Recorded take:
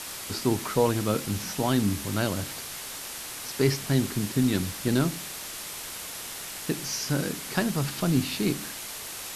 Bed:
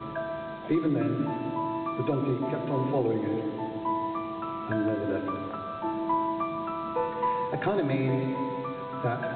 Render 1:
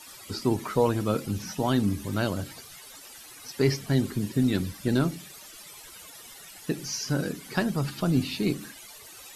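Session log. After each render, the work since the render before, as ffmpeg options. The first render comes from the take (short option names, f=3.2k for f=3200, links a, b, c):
-af "afftdn=nr=15:nf=-38"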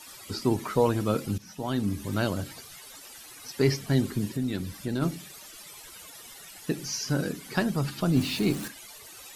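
-filter_complex "[0:a]asplit=3[a][b][c];[a]afade=t=out:st=4.33:d=0.02[d];[b]acompressor=threshold=-35dB:ratio=1.5:attack=3.2:release=140:knee=1:detection=peak,afade=t=in:st=4.33:d=0.02,afade=t=out:st=5.01:d=0.02[e];[c]afade=t=in:st=5.01:d=0.02[f];[d][e][f]amix=inputs=3:normalize=0,asettb=1/sr,asplit=3[g][h][i];[g]atrim=end=8.164[j];[h]atrim=start=8.16:end=8.68,asetpts=PTS-STARTPTS,afade=t=in:d=0.004:c=qsin,afade=t=out:st=0.516:d=0.004:c=qsin,aeval=exprs='val(0)+0.5*0.0178*sgn(val(0))':c=same[k];[i]atrim=start=8.676[l];[j][k]acrossfade=d=0.004:c1=hsin:c2=qsin[m];[m][l]acrossfade=d=0.004:c1=qsin:c2=hsin,asplit=2[n][o];[n]atrim=end=1.38,asetpts=PTS-STARTPTS,afade=t=out:st=1.376:d=0.004:c=hsin:silence=0.199526[p];[o]atrim=start=1.38,asetpts=PTS-STARTPTS,afade=t=in:d=0.74:silence=0.199526[q];[p][q]concat=n=2:v=0:a=1"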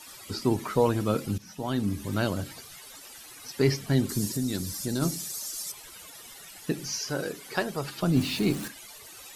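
-filter_complex "[0:a]asettb=1/sr,asplit=3[a][b][c];[a]atrim=end=4.094[d];[b]atrim=start=4.09:end=5.72,asetpts=PTS-STARTPTS,afade=t=in:d=0.004:c=qsin,afade=t=out:st=1.626:d=0.004:c=qsin,highshelf=f=4k:t=q:w=1.5:g=10.5[e];[c]atrim=start=5.716[f];[d][e]acrossfade=d=0.004:c1=hsin:c2=qsin[g];[g][f]acrossfade=d=0.004:c1=qsin:c2=hsin,asettb=1/sr,asplit=3[h][i][j];[h]atrim=end=6.984[k];[i]atrim=start=6.98:end=8.03,asetpts=PTS-STARTPTS,afade=t=in:d=0.004:c=qsin,afade=t=out:st=1.046:d=0.004:c=qsin,lowshelf=f=320:t=q:w=1.5:g=-7.5[l];[j]atrim=start=8.026[m];[k][l]acrossfade=d=0.004:c1=hsin:c2=qsin[n];[n][m]acrossfade=d=0.004:c1=qsin:c2=hsin"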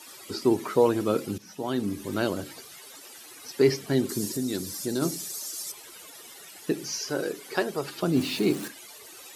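-af "highpass=f=240:p=1,equalizer=f=370:w=1.6:g=7"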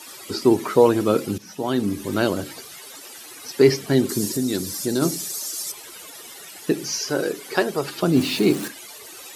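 -af "volume=6dB"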